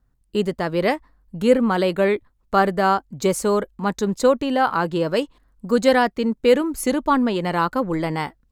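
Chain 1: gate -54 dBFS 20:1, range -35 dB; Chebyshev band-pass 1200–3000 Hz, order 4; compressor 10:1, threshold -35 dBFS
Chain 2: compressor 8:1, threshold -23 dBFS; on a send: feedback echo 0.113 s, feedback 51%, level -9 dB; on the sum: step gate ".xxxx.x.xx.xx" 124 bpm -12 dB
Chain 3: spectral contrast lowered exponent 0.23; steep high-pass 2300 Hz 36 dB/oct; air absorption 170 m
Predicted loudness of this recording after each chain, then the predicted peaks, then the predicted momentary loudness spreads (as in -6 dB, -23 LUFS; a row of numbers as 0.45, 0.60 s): -40.0, -29.0, -28.5 LUFS; -23.5, -12.5, -8.0 dBFS; 5, 6, 7 LU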